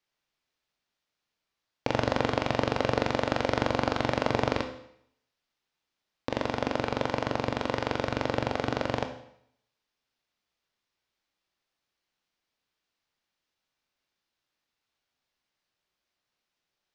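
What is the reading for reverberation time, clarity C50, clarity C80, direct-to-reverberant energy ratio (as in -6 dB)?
0.70 s, 9.5 dB, 12.5 dB, 6.0 dB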